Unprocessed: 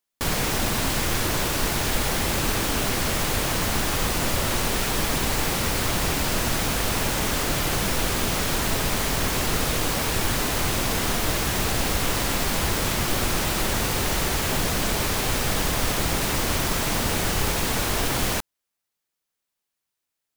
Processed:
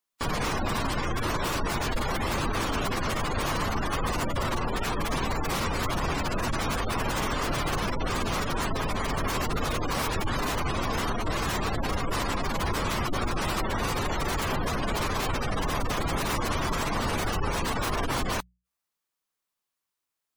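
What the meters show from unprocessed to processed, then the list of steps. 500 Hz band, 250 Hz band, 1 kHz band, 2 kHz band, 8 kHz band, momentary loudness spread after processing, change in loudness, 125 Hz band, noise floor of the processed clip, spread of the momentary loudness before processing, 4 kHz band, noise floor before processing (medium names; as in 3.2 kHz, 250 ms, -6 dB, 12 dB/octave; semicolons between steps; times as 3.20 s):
-3.0 dB, -3.5 dB, -0.5 dB, -4.5 dB, -11.5 dB, 1 LU, -5.5 dB, -3.5 dB, -85 dBFS, 0 LU, -7.5 dB, -83 dBFS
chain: hum notches 60/120/180 Hz; spectral gate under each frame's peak -20 dB strong; peaking EQ 1.1 kHz +6 dB 0.51 oct; trim -3 dB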